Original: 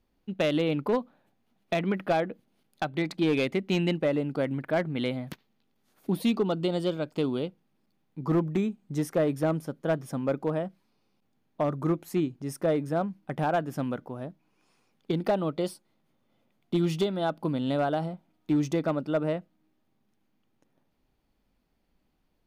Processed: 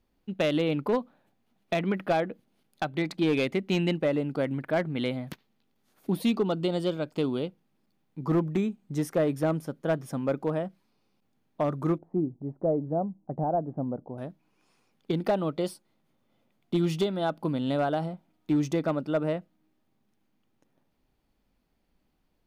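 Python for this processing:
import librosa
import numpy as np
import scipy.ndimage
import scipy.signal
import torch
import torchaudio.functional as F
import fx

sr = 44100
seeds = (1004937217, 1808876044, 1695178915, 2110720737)

y = fx.cheby1_lowpass(x, sr, hz=780.0, order=3, at=(11.98, 14.18))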